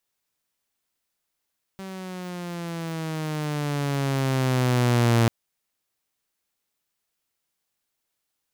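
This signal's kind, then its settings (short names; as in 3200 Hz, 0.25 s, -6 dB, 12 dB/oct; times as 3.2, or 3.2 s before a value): gliding synth tone saw, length 3.49 s, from 193 Hz, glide -9 st, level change +18.5 dB, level -13.5 dB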